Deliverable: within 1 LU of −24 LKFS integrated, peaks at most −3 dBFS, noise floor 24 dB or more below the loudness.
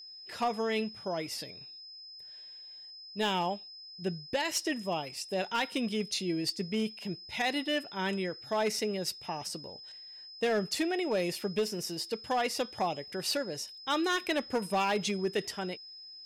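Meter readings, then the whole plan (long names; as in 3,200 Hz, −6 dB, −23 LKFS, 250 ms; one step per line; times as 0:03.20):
share of clipped samples 0.9%; peaks flattened at −23.5 dBFS; interfering tone 5,100 Hz; level of the tone −46 dBFS; integrated loudness −33.0 LKFS; sample peak −23.5 dBFS; target loudness −24.0 LKFS
→ clipped peaks rebuilt −23.5 dBFS
notch filter 5,100 Hz, Q 30
level +9 dB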